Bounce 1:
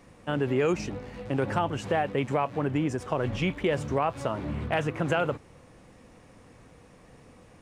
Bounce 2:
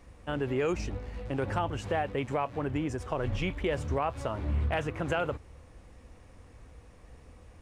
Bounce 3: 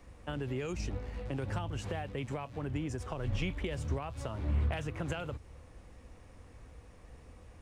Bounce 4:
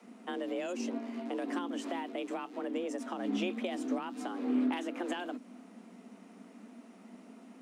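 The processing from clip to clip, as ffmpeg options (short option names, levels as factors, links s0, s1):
-af "lowshelf=f=100:t=q:w=1.5:g=11,volume=0.668"
-filter_complex "[0:a]acrossover=split=200|3000[s0][s1][s2];[s1]acompressor=threshold=0.0141:ratio=6[s3];[s0][s3][s2]amix=inputs=3:normalize=0,volume=0.891"
-af "afreqshift=180"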